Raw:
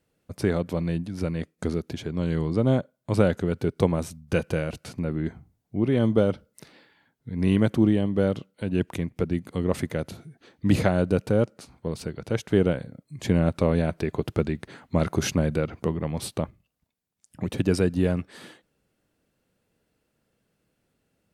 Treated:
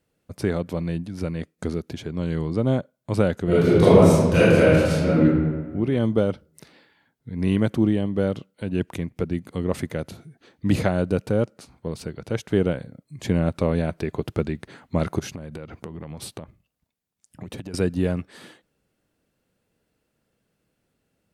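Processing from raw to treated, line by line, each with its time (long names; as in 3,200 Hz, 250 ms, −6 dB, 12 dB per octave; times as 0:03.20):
0:03.44–0:05.21: thrown reverb, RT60 1.5 s, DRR −12 dB
0:15.19–0:17.74: downward compressor 16 to 1, threshold −30 dBFS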